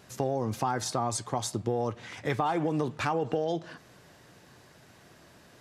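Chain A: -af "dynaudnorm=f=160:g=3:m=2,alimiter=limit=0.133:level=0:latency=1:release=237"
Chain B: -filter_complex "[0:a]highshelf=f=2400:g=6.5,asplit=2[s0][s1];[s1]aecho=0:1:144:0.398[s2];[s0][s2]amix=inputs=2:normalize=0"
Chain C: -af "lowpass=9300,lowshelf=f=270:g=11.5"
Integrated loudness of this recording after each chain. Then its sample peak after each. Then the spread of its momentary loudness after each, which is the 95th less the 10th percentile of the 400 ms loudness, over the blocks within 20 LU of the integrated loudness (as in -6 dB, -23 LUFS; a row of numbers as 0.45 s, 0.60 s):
-29.0 LUFS, -29.0 LUFS, -26.5 LUFS; -17.5 dBFS, -12.5 dBFS, -9.5 dBFS; 6 LU, 6 LU, 5 LU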